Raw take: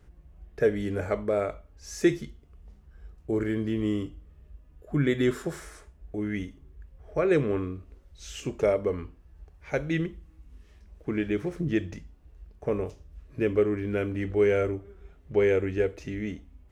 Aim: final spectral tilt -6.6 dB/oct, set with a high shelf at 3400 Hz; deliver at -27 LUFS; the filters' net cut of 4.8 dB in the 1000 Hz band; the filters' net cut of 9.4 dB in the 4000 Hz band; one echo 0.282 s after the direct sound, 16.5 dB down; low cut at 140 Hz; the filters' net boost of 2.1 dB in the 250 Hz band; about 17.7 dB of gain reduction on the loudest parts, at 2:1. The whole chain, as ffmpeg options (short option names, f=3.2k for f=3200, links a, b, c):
-af "highpass=140,equalizer=f=250:t=o:g=4,equalizer=f=1k:t=o:g=-6,highshelf=f=3.4k:g=-9,equalizer=f=4k:t=o:g=-6.5,acompressor=threshold=-51dB:ratio=2,aecho=1:1:282:0.15,volume=16.5dB"